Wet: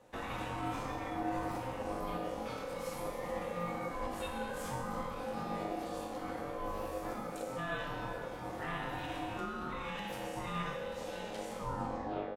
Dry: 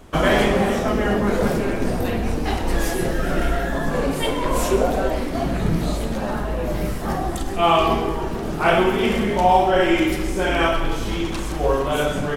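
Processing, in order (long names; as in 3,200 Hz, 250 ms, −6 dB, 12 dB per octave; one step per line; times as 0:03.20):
turntable brake at the end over 0.77 s
comb filter 4.1 ms, depth 32%
brickwall limiter −14 dBFS, peak gain reduction 11 dB
tuned comb filter 99 Hz, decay 1 s, harmonics all, mix 90%
ring modulation 520 Hz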